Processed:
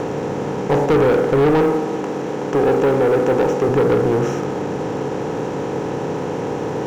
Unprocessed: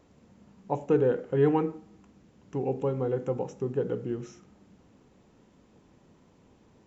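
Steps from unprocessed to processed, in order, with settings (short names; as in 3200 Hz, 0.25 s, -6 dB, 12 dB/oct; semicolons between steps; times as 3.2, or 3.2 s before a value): per-bin compression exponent 0.4; 1.61–3.69 HPF 170 Hz 12 dB/oct; sample leveller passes 3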